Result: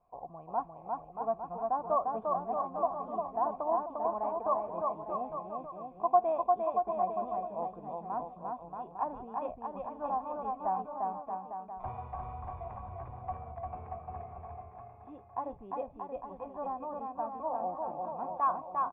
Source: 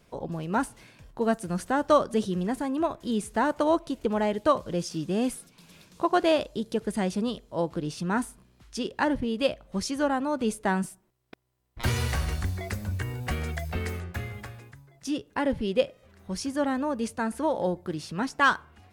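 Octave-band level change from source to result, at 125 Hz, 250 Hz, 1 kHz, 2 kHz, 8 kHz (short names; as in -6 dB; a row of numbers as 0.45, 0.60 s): -16.5 dB, -18.0 dB, -0.5 dB, under -25 dB, under -40 dB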